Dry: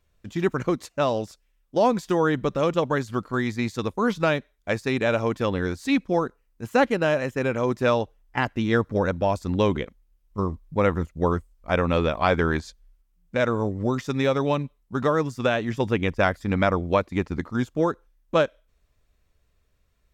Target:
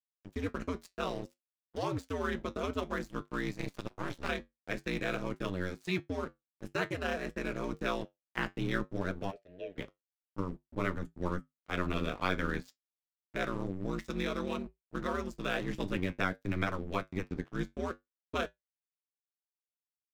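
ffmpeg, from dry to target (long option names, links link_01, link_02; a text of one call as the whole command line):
ffmpeg -i in.wav -filter_complex "[0:a]highpass=frequency=46:width=0.5412,highpass=frequency=46:width=1.3066,equalizer=frequency=770:width_type=o:width=0.53:gain=-11,acrossover=split=200|780|1300[link_01][link_02][link_03][link_04];[link_02]alimiter=limit=-24dB:level=0:latency=1[link_05];[link_01][link_05][link_03][link_04]amix=inputs=4:normalize=0,aeval=exprs='sgn(val(0))*max(abs(val(0))-0.00891,0)':channel_layout=same,asplit=3[link_06][link_07][link_08];[link_06]afade=type=out:start_time=9.3:duration=0.02[link_09];[link_07]asplit=3[link_10][link_11][link_12];[link_10]bandpass=frequency=530:width_type=q:width=8,volume=0dB[link_13];[link_11]bandpass=frequency=1840:width_type=q:width=8,volume=-6dB[link_14];[link_12]bandpass=frequency=2480:width_type=q:width=8,volume=-9dB[link_15];[link_13][link_14][link_15]amix=inputs=3:normalize=0,afade=type=in:start_time=9.3:duration=0.02,afade=type=out:start_time=9.77:duration=0.02[link_16];[link_08]afade=type=in:start_time=9.77:duration=0.02[link_17];[link_09][link_16][link_17]amix=inputs=3:normalize=0,asettb=1/sr,asplit=3[link_18][link_19][link_20];[link_18]atrim=end=15.494[link_21];[link_19]atrim=start=15.49:end=16.13,asetpts=PTS-STARTPTS,afade=type=in:duration=0.004:curve=qsin,afade=type=out:start_time=0.636:duration=0.004:curve=qsin,aeval=exprs='0.211*(cos(1*acos(clip(val(0)/0.211,-1,1)))-cos(1*PI/2))+0.0188*(cos(5*acos(clip(val(0)/0.211,-1,1)))-cos(5*PI/2))':channel_layout=same[link_22];[link_20]atrim=start=16.126[link_23];[link_21][link_22]acrossfade=duration=0.004:curve1=hsin:curve2=qsin[link_24];[link_24][link_23]acrossfade=duration=0.004:curve1=qsin:curve2=hsin,aeval=exprs='val(0)*sin(2*PI*92*n/s)':channel_layout=same,flanger=delay=9:depth=2:regen=-64:speed=0.54:shape=triangular,asettb=1/sr,asplit=3[link_25][link_26][link_27];[link_25]atrim=end=3.584[link_28];[link_26]atrim=start=3.58:end=4.29,asetpts=PTS-STARTPTS,afade=type=in:duration=0.004:curve=qsin,afade=type=out:start_time=0.706:duration=0.004:curve=qsin,aeval=exprs='max(val(0),0)':channel_layout=same[link_29];[link_27]atrim=start=4.286[link_30];[link_28][link_29]acrossfade=duration=0.004:curve1=hsin:curve2=qsin[link_31];[link_31][link_30]acrossfade=duration=0.004:curve1=qsin:curve2=hsin" out.wav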